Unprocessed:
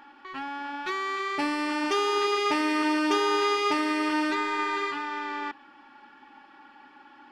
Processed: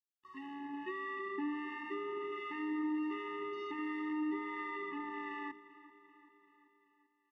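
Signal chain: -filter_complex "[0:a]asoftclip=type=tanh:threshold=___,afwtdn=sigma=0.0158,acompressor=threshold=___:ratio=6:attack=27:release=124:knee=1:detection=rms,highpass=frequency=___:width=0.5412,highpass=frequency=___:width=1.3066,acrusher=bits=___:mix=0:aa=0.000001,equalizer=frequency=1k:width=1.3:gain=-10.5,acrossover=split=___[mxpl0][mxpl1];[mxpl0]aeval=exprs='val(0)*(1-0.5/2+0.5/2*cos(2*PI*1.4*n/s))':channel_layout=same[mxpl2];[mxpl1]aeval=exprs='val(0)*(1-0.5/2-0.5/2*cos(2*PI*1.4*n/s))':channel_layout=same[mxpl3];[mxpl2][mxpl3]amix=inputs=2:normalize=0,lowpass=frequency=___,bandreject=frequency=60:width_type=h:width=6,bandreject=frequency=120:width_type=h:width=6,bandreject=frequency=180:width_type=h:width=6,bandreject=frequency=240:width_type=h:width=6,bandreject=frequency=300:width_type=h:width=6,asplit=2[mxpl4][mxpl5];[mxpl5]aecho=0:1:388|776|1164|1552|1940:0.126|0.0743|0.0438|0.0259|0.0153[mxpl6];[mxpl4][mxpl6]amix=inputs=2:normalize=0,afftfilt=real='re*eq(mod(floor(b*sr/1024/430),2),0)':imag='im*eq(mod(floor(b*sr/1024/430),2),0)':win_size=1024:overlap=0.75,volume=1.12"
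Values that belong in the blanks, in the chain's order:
0.0708, 0.0282, 160, 160, 8, 960, 2.5k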